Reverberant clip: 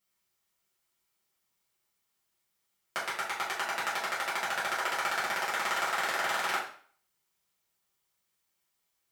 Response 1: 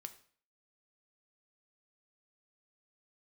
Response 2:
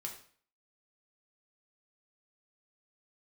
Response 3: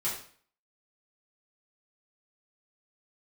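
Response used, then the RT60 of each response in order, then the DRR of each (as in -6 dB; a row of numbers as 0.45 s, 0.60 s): 3; 0.50 s, 0.50 s, 0.50 s; 8.0 dB, 0.0 dB, -9.5 dB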